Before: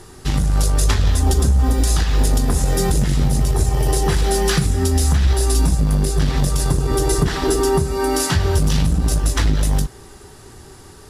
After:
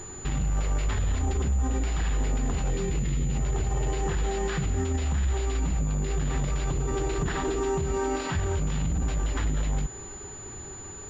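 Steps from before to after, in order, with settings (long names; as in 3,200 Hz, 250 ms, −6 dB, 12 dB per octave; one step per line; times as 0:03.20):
brickwall limiter −18 dBFS, peak gain reduction 11.5 dB
0:02.70–0:03.35: flat-topped bell 1,000 Hz −11 dB
switching amplifier with a slow clock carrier 7,000 Hz
level −1.5 dB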